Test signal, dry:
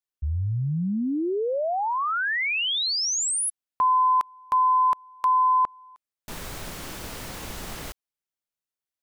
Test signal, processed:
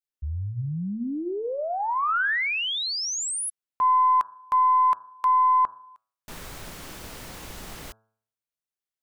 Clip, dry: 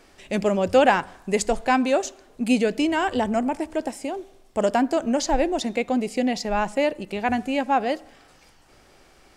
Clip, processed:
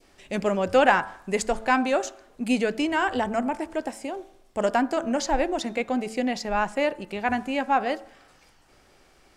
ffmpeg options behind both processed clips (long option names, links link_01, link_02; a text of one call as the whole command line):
ffmpeg -i in.wav -af "adynamicequalizer=threshold=0.02:dfrequency=1400:dqfactor=0.97:tfrequency=1400:tqfactor=0.97:attack=5:release=100:ratio=0.375:range=3:mode=boostabove:tftype=bell,aeval=exprs='0.841*(cos(1*acos(clip(val(0)/0.841,-1,1)))-cos(1*PI/2))+0.0188*(cos(3*acos(clip(val(0)/0.841,-1,1)))-cos(3*PI/2))+0.015*(cos(4*acos(clip(val(0)/0.841,-1,1)))-cos(4*PI/2))':channel_layout=same,bandreject=frequency=110.3:width_type=h:width=4,bandreject=frequency=220.6:width_type=h:width=4,bandreject=frequency=330.9:width_type=h:width=4,bandreject=frequency=441.2:width_type=h:width=4,bandreject=frequency=551.5:width_type=h:width=4,bandreject=frequency=661.8:width_type=h:width=4,bandreject=frequency=772.1:width_type=h:width=4,bandreject=frequency=882.4:width_type=h:width=4,bandreject=frequency=992.7:width_type=h:width=4,bandreject=frequency=1103:width_type=h:width=4,bandreject=frequency=1213.3:width_type=h:width=4,bandreject=frequency=1323.6:width_type=h:width=4,bandreject=frequency=1433.9:width_type=h:width=4,bandreject=frequency=1544.2:width_type=h:width=4,bandreject=frequency=1654.5:width_type=h:width=4,volume=-3dB" out.wav